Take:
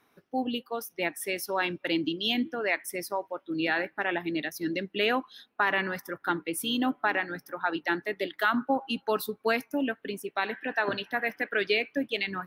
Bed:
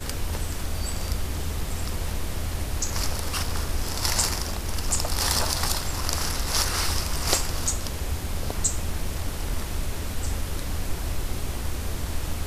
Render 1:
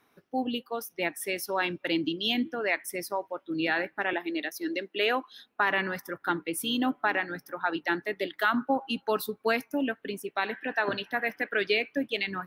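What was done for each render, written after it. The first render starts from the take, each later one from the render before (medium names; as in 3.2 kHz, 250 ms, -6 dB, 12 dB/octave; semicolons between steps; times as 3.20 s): 4.13–5.32 s: high-pass 280 Hz 24 dB/octave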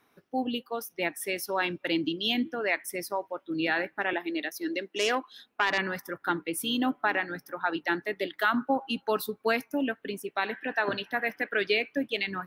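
4.91–5.78 s: self-modulated delay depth 0.096 ms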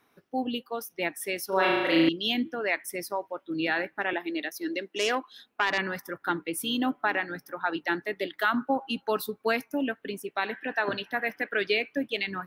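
1.48–2.09 s: flutter echo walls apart 6.3 m, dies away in 1.4 s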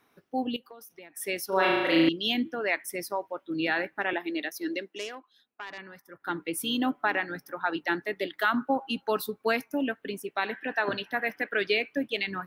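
0.56–1.17 s: compression 12:1, threshold -43 dBFS; 4.73–6.47 s: dip -14.5 dB, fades 0.38 s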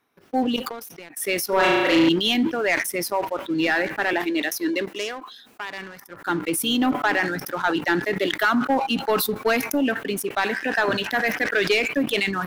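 waveshaping leveller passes 2; decay stretcher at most 57 dB/s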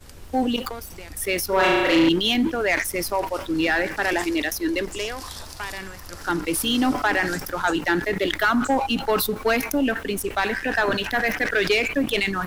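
add bed -14 dB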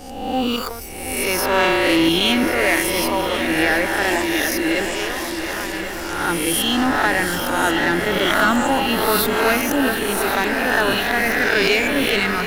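reverse spectral sustain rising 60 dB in 1.08 s; multi-head delay 363 ms, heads second and third, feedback 62%, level -11 dB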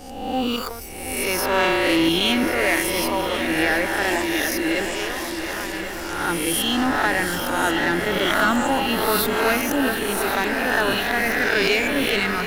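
trim -2.5 dB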